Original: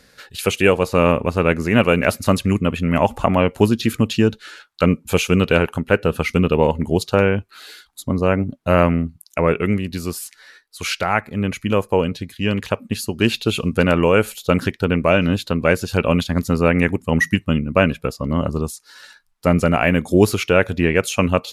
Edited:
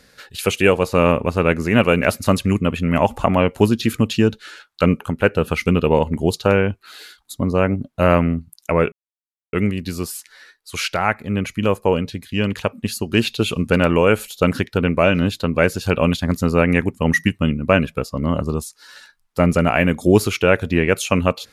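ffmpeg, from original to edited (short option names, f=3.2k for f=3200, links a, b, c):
-filter_complex "[0:a]asplit=3[a][b][c];[a]atrim=end=5.002[d];[b]atrim=start=5.678:end=9.6,asetpts=PTS-STARTPTS,afade=t=out:st=3.918:d=0.004:c=hsin,apad=pad_dur=0.61[e];[c]atrim=start=9.6,asetpts=PTS-STARTPTS,afade=t=in:d=0.004:c=hsin[f];[e][f]concat=n=2:v=0:a=1[g];[d][g]acrossfade=d=0.004:c1=hsin:c2=hsin"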